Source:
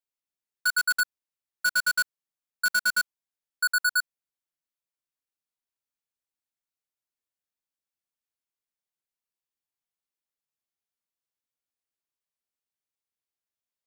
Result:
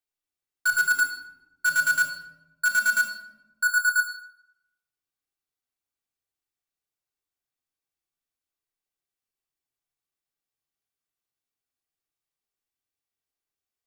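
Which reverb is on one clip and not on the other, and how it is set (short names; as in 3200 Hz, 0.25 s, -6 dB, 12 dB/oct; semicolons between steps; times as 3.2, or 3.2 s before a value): shoebox room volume 3800 m³, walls furnished, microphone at 3.6 m; gain -1.5 dB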